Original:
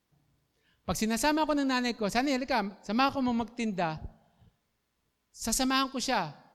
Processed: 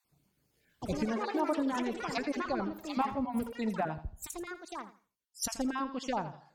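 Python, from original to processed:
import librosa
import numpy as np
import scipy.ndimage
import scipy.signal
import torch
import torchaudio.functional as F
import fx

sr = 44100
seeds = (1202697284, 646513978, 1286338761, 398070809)

y = fx.spec_dropout(x, sr, seeds[0], share_pct=31)
y = fx.env_lowpass_down(y, sr, base_hz=1100.0, full_db=-26.0)
y = fx.high_shelf(y, sr, hz=6700.0, db=11.0)
y = fx.echo_pitch(y, sr, ms=162, semitones=5, count=3, db_per_echo=-6.0)
y = fx.brickwall_highpass(y, sr, low_hz=200.0, at=(1.05, 1.59))
y = fx.echo_feedback(y, sr, ms=84, feedback_pct=27, wet_db=-12)
y = fx.band_widen(y, sr, depth_pct=70, at=(3.26, 5.46))
y = F.gain(torch.from_numpy(y), -2.5).numpy()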